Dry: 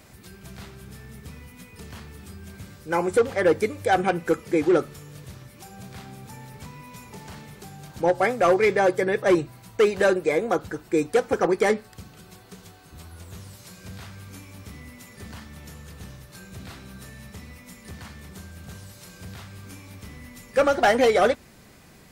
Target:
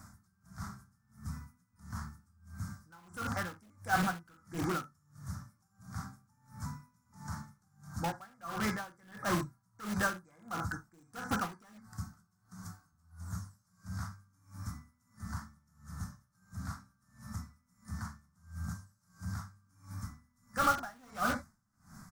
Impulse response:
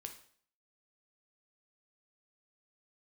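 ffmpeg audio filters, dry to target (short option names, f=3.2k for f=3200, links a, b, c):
-filter_complex "[0:a]firequalizer=gain_entry='entry(230,0);entry(420,-26);entry(680,-8);entry(1300,5);entry(2700,-29);entry(5400,-1);entry(14000,-7)':delay=0.05:min_phase=1[a];[1:a]atrim=start_sample=2205,atrim=end_sample=4410[b];[a][b]afir=irnorm=-1:irlink=0,asplit=2[c][d];[d]aeval=exprs='(mod(37.6*val(0)+1,2)-1)/37.6':c=same,volume=-6dB[e];[c][e]amix=inputs=2:normalize=0,aeval=exprs='val(0)*pow(10,-30*(0.5-0.5*cos(2*PI*1.5*n/s))/20)':c=same,volume=3dB"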